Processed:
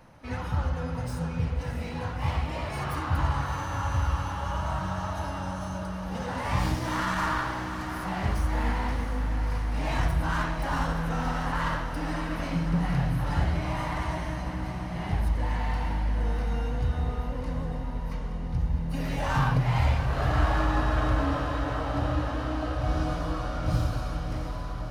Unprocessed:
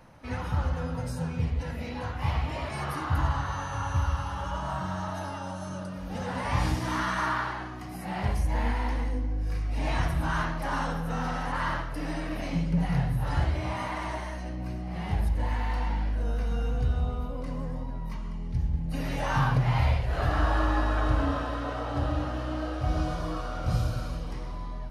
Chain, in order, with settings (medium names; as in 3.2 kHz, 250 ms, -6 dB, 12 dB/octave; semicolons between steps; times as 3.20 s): tracing distortion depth 0.047 ms; on a send: echo that smears into a reverb 655 ms, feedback 70%, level -9 dB